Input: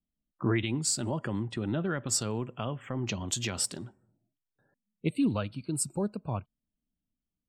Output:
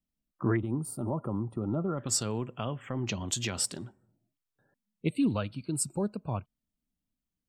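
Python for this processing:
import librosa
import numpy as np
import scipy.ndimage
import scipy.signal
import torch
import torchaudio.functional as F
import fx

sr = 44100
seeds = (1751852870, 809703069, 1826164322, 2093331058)

y = fx.spec_box(x, sr, start_s=0.56, length_s=1.42, low_hz=1400.0, high_hz=8800.0, gain_db=-25)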